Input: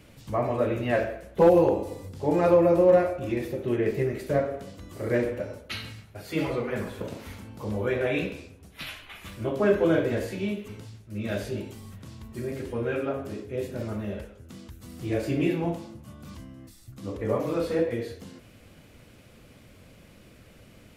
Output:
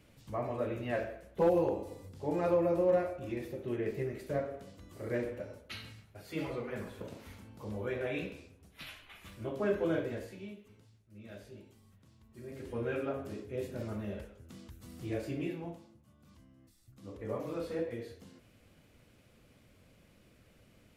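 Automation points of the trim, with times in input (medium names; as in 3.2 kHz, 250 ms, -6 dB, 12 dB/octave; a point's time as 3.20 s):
9.98 s -9.5 dB
10.66 s -19 dB
12.25 s -19 dB
12.77 s -6.5 dB
14.96 s -6.5 dB
16.08 s -19 dB
17.40 s -10.5 dB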